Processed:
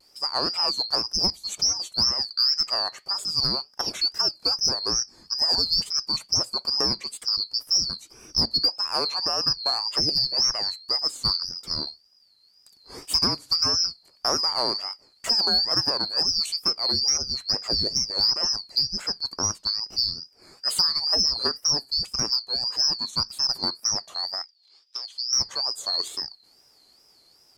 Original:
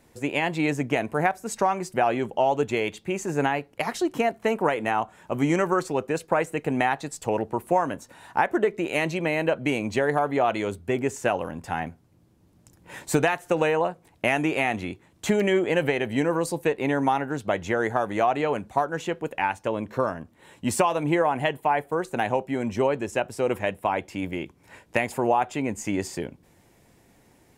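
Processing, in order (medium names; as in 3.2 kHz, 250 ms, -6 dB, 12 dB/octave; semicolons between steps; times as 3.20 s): four frequency bands reordered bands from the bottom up 2341; wow and flutter 150 cents; saturation -8 dBFS, distortion -27 dB; 24.42–25.33 s: band-pass filter 3.6 kHz, Q 2.7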